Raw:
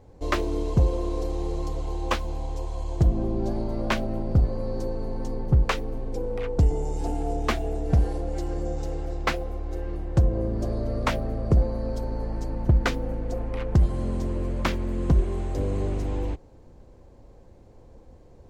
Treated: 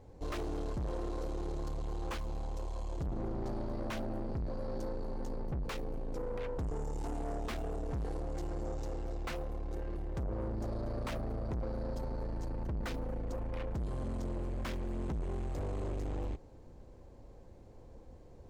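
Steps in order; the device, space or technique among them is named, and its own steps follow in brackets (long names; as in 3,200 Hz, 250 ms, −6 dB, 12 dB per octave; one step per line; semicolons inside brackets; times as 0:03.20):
saturation between pre-emphasis and de-emphasis (high-shelf EQ 2,500 Hz +11 dB; soft clipping −30 dBFS, distortion −4 dB; high-shelf EQ 2,500 Hz −11 dB)
level −3.5 dB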